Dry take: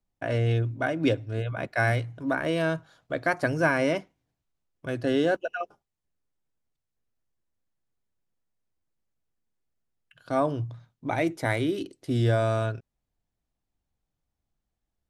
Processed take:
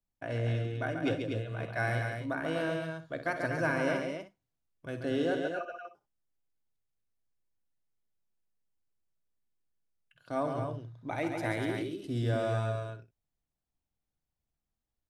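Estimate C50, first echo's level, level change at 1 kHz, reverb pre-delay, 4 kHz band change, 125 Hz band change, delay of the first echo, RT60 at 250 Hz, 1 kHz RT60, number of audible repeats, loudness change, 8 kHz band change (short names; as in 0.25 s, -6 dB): none, -13.0 dB, -6.0 dB, none, -6.0 dB, -6.0 dB, 50 ms, none, none, 5, -6.0 dB, -6.0 dB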